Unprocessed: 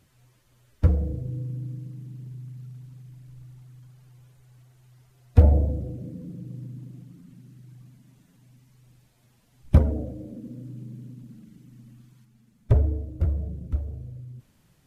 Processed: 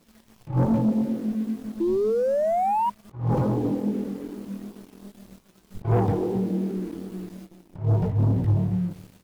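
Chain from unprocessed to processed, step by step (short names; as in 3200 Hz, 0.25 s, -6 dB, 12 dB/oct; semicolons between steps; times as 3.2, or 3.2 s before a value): speed glide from 179% -> 143%; on a send: feedback echo 0.269 s, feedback 23%, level -20.5 dB; on the sum: negative-ratio compressor -27 dBFS, ratio -0.5; chorus 2.5 Hz, delay 16 ms, depth 6 ms; painted sound rise, 1.8–2.9, 330–980 Hz -33 dBFS; sample leveller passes 2; gain +3.5 dB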